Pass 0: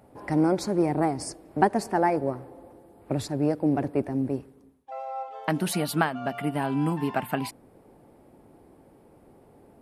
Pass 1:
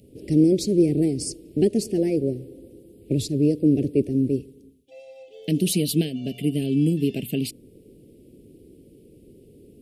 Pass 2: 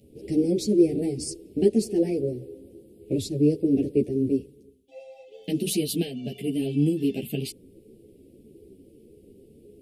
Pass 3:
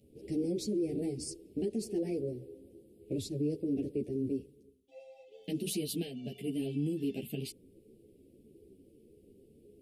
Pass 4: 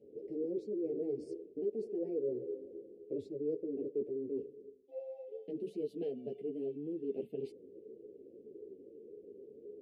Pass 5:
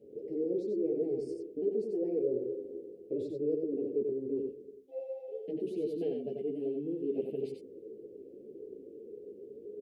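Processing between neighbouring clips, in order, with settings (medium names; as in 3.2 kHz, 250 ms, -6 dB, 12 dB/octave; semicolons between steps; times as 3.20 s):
Chebyshev band-stop 440–2800 Hz, order 3; trim +6.5 dB
graphic EQ with 31 bands 400 Hz +4 dB, 800 Hz +6 dB, 1.25 kHz -3 dB; three-phase chorus
peak limiter -17.5 dBFS, peak gain reduction 9.5 dB; trim -8 dB
reverse; compression, threshold -41 dBFS, peak gain reduction 11.5 dB; reverse; band-pass filter 450 Hz, Q 3.4; trim +12 dB
delay 91 ms -4.5 dB; trim +3.5 dB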